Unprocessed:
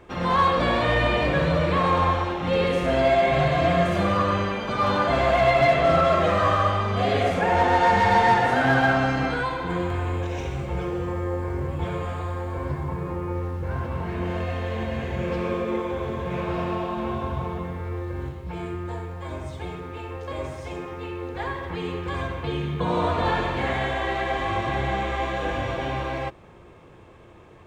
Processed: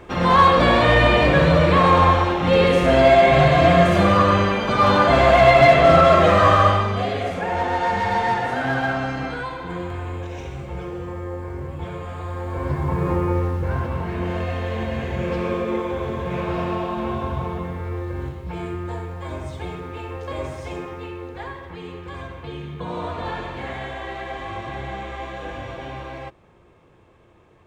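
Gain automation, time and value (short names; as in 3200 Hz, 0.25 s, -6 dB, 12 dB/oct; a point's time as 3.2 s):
6.7 s +6.5 dB
7.15 s -3 dB
12.05 s -3 dB
13.12 s +9 dB
14.07 s +2.5 dB
20.79 s +2.5 dB
21.68 s -5.5 dB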